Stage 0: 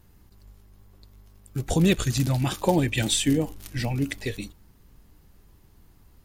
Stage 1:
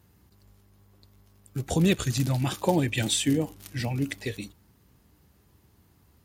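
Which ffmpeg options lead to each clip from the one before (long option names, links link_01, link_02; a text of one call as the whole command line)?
ffmpeg -i in.wav -af "highpass=frequency=64:width=0.5412,highpass=frequency=64:width=1.3066,volume=-2dB" out.wav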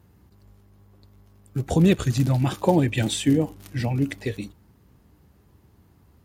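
ffmpeg -i in.wav -af "highshelf=frequency=2000:gain=-8.5,volume=5dB" out.wav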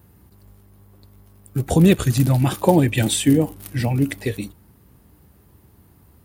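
ffmpeg -i in.wav -af "aexciter=amount=3.6:drive=2.2:freq=8700,volume=4dB" out.wav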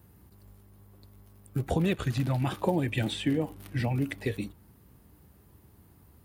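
ffmpeg -i in.wav -filter_complex "[0:a]acrossover=split=590|4000[link_01][link_02][link_03];[link_01]acompressor=threshold=-21dB:ratio=4[link_04];[link_02]acompressor=threshold=-27dB:ratio=4[link_05];[link_03]acompressor=threshold=-49dB:ratio=4[link_06];[link_04][link_05][link_06]amix=inputs=3:normalize=0,volume=-5dB" out.wav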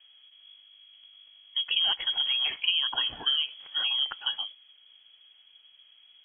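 ffmpeg -i in.wav -af "lowpass=frequency=2900:width_type=q:width=0.5098,lowpass=frequency=2900:width_type=q:width=0.6013,lowpass=frequency=2900:width_type=q:width=0.9,lowpass=frequency=2900:width_type=q:width=2.563,afreqshift=-3400" out.wav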